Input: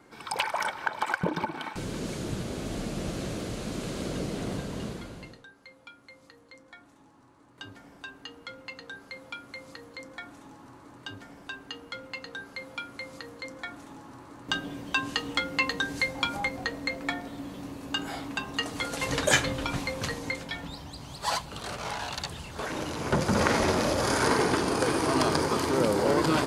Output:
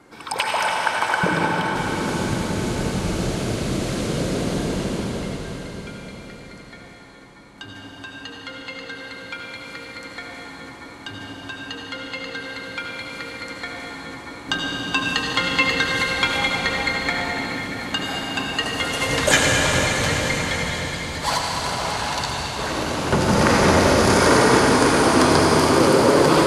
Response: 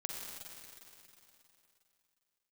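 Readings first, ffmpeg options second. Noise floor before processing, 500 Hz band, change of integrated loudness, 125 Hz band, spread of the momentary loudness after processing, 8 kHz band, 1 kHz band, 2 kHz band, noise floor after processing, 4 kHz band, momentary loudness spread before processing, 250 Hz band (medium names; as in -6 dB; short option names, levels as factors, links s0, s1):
-57 dBFS, +9.5 dB, +9.5 dB, +10.0 dB, 19 LU, +10.0 dB, +9.5 dB, +9.5 dB, -41 dBFS, +10.0 dB, 19 LU, +9.5 dB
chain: -filter_complex "[1:a]atrim=start_sample=2205,asetrate=25137,aresample=44100[s0];[0:a][s0]afir=irnorm=-1:irlink=0,volume=1.78"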